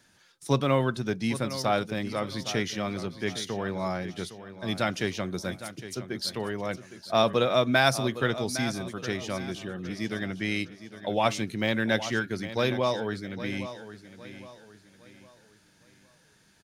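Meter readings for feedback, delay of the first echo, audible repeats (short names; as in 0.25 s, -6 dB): 36%, 0.81 s, 3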